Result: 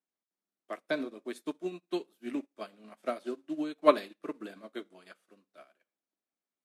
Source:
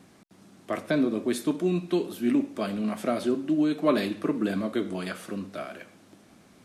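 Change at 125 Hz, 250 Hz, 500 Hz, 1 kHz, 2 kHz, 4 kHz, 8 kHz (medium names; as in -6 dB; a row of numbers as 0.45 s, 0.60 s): -21.0 dB, -12.0 dB, -4.5 dB, -0.5 dB, -6.0 dB, -7.0 dB, under -10 dB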